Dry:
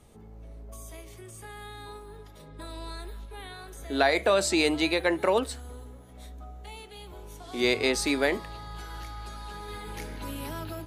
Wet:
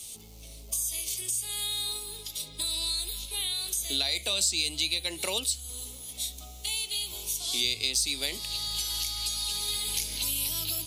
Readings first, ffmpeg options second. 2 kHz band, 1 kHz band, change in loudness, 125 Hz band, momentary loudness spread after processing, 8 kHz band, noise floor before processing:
-7.0 dB, -13.0 dB, -1.5 dB, -4.5 dB, 9 LU, +11.0 dB, -48 dBFS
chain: -filter_complex "[0:a]aexciter=amount=14.4:drive=7.6:freq=2.6k,acrossover=split=150[a][b];[b]acompressor=threshold=-25dB:ratio=4[c];[a][c]amix=inputs=2:normalize=0,volume=-3.5dB"

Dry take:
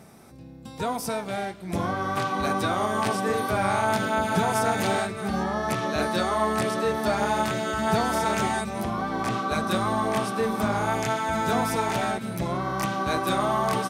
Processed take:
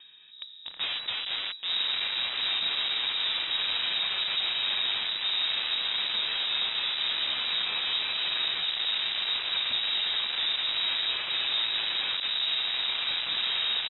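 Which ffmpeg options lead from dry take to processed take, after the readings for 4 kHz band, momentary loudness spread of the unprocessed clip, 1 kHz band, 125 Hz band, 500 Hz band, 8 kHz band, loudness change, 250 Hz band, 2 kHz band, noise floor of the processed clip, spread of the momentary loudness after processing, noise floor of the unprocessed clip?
+13.5 dB, 6 LU, -17.0 dB, under -25 dB, -23.0 dB, under -40 dB, -0.5 dB, under -25 dB, -2.5 dB, -47 dBFS, 3 LU, -43 dBFS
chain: -filter_complex "[0:a]equalizer=f=790:t=o:w=0.67:g=-4.5,aecho=1:1:1.4:0.59,acrossover=split=360[a][b];[b]acompressor=threshold=-59dB:ratio=1.5[c];[a][c]amix=inputs=2:normalize=0,acrossover=split=710|2000[d][e][f];[f]acrusher=bits=2:mode=log:mix=0:aa=0.000001[g];[d][e][g]amix=inputs=3:normalize=0,crystalizer=i=0.5:c=0,aeval=exprs='(tanh(35.5*val(0)+0.35)-tanh(0.35))/35.5':c=same,asplit=2[h][i];[i]adelay=1050,volume=-13dB,highshelf=f=4k:g=-23.6[j];[h][j]amix=inputs=2:normalize=0,asplit=2[k][l];[l]acrusher=bits=5:mix=0:aa=0.000001,volume=-4dB[m];[k][m]amix=inputs=2:normalize=0,aeval=exprs='0.0668*(cos(1*acos(clip(val(0)/0.0668,-1,1)))-cos(1*PI/2))+0.0188*(cos(7*acos(clip(val(0)/0.0668,-1,1)))-cos(7*PI/2))':c=same,lowpass=f=3.3k:t=q:w=0.5098,lowpass=f=3.3k:t=q:w=0.6013,lowpass=f=3.3k:t=q:w=0.9,lowpass=f=3.3k:t=q:w=2.563,afreqshift=-3900"

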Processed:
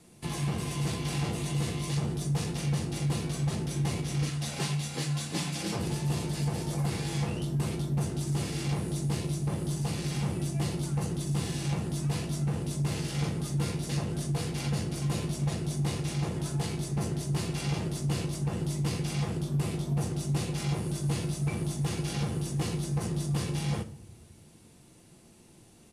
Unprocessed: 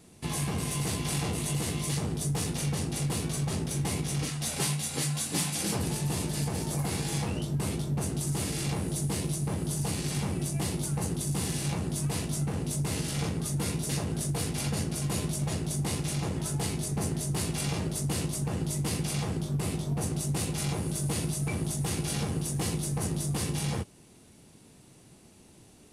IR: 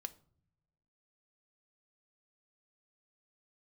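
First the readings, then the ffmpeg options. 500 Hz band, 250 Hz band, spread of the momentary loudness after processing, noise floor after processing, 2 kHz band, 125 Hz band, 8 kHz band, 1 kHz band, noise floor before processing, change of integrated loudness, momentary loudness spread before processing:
-1.0 dB, 0.0 dB, 1 LU, -56 dBFS, -1.5 dB, +1.0 dB, -7.0 dB, -1.0 dB, -56 dBFS, -1.0 dB, 1 LU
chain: -filter_complex "[0:a]acrossover=split=300|6600[a][b][c];[c]acompressor=threshold=-47dB:ratio=6[d];[a][b][d]amix=inputs=3:normalize=0,aresample=32000,aresample=44100[e];[1:a]atrim=start_sample=2205,asetrate=29106,aresample=44100[f];[e][f]afir=irnorm=-1:irlink=0"

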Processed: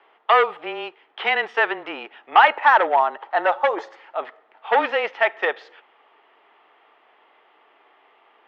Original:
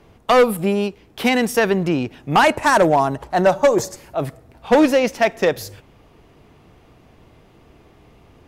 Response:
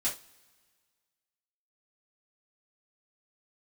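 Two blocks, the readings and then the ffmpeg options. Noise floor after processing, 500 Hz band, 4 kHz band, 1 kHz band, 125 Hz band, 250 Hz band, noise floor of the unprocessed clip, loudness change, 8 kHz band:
-58 dBFS, -7.0 dB, -2.5 dB, +1.0 dB, under -30 dB, -19.0 dB, -52 dBFS, -2.5 dB, under -30 dB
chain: -af "highpass=f=480:w=0.5412,highpass=f=480:w=1.3066,equalizer=f=590:t=q:w=4:g=-4,equalizer=f=870:t=q:w=4:g=7,equalizer=f=1.3k:t=q:w=4:g=7,equalizer=f=1.9k:t=q:w=4:g=7,equalizer=f=3.2k:t=q:w=4:g=7,lowpass=f=3.2k:w=0.5412,lowpass=f=3.2k:w=1.3066,afreqshift=-20,volume=-4dB"

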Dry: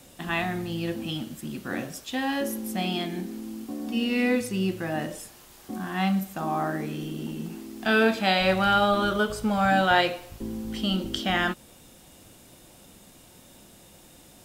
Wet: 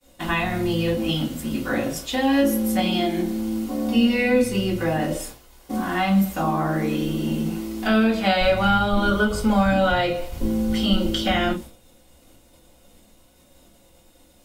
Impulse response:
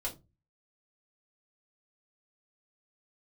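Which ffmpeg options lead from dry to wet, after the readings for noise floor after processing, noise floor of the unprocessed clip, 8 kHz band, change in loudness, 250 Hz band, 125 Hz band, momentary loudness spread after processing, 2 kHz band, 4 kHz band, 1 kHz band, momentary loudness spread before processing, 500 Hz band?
-55 dBFS, -52 dBFS, +5.0 dB, +4.5 dB, +7.0 dB, +6.0 dB, 8 LU, +1.5 dB, +3.0 dB, +2.0 dB, 15 LU, +5.0 dB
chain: -filter_complex "[0:a]acrossover=split=230[a][b];[b]acompressor=threshold=-30dB:ratio=3[c];[a][c]amix=inputs=2:normalize=0,agate=range=-33dB:threshold=-42dB:ratio=3:detection=peak[d];[1:a]atrim=start_sample=2205,afade=t=out:st=0.14:d=0.01,atrim=end_sample=6615[e];[d][e]afir=irnorm=-1:irlink=0,volume=7.5dB"

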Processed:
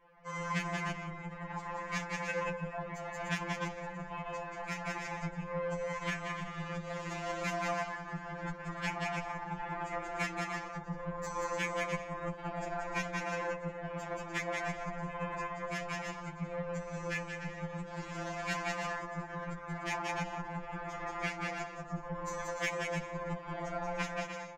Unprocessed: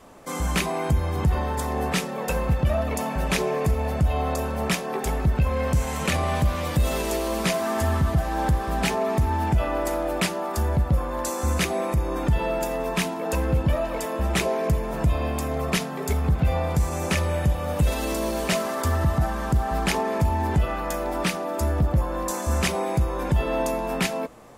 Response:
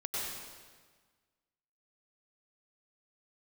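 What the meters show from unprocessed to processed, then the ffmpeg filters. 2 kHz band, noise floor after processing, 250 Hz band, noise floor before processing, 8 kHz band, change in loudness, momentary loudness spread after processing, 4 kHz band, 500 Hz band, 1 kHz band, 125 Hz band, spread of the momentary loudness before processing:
-6.0 dB, -46 dBFS, -14.0 dB, -31 dBFS, -15.5 dB, -13.0 dB, 6 LU, -13.5 dB, -13.0 dB, -10.0 dB, -18.5 dB, 4 LU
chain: -filter_complex "[0:a]equalizer=f=89:w=0.54:g=11,acrossover=split=4300[a][b];[a]flanger=delay=3.7:depth=9.7:regen=2:speed=0.54:shape=sinusoidal[c];[b]aeval=exprs='sgn(val(0))*max(abs(val(0))-0.002,0)':c=same[d];[c][d]amix=inputs=2:normalize=0,aresample=16000,aresample=44100,tremolo=f=33:d=0.75,alimiter=limit=-11dB:level=0:latency=1:release=191,asplit=2[e][f];[f]aecho=0:1:180|297|373|422.5|454.6:0.631|0.398|0.251|0.158|0.1[g];[e][g]amix=inputs=2:normalize=0,asoftclip=type=tanh:threshold=-16dB,aeval=exprs='0.158*(cos(1*acos(clip(val(0)/0.158,-1,1)))-cos(1*PI/2))+0.0398*(cos(3*acos(clip(val(0)/0.158,-1,1)))-cos(3*PI/2))':c=same,acompressor=threshold=-31dB:ratio=6,equalizer=f=250:t=o:w=1:g=-11,equalizer=f=1k:t=o:w=1:g=4,equalizer=f=2k:t=o:w=1:g=10,equalizer=f=4k:t=o:w=1:g=-5,afftfilt=real='re*2.83*eq(mod(b,8),0)':imag='im*2.83*eq(mod(b,8),0)':win_size=2048:overlap=0.75,volume=3.5dB"

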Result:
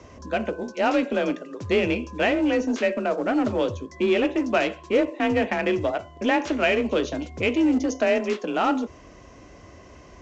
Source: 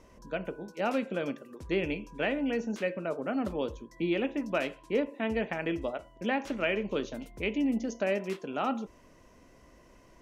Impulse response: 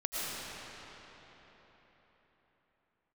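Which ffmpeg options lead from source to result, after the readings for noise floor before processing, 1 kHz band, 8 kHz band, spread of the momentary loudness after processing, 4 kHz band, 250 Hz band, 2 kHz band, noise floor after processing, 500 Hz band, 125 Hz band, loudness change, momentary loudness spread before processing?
-58 dBFS, +9.5 dB, n/a, 7 LU, +9.0 dB, +8.5 dB, +8.5 dB, -48 dBFS, +9.0 dB, +6.0 dB, +8.5 dB, 7 LU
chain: -filter_complex "[0:a]afreqshift=33,asplit=2[a][b];[b]asoftclip=type=hard:threshold=-34dB,volume=-5dB[c];[a][c]amix=inputs=2:normalize=0,volume=6.5dB" -ar 16000 -c:a pcm_mulaw

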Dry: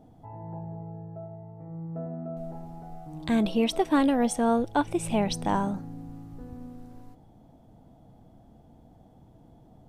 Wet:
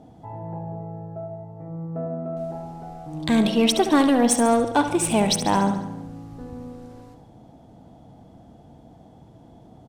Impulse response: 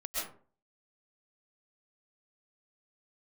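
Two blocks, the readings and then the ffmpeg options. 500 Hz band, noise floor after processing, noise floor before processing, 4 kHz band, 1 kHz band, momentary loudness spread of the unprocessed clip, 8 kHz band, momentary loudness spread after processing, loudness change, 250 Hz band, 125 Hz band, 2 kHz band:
+6.0 dB, -50 dBFS, -56 dBFS, +10.0 dB, +6.0 dB, 19 LU, +12.5 dB, 20 LU, +6.5 dB, +5.0 dB, +5.0 dB, +6.5 dB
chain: -filter_complex "[0:a]highpass=f=83:p=1,asplit=2[a][b];[b]asoftclip=type=tanh:threshold=-25.5dB,volume=-3.5dB[c];[a][c]amix=inputs=2:normalize=0,crystalizer=i=2:c=0,aecho=1:1:71|142|213|284|355|426|497:0.316|0.19|0.114|0.0683|0.041|0.0246|0.0148,adynamicsmooth=sensitivity=4.5:basefreq=6k,volume=2.5dB"

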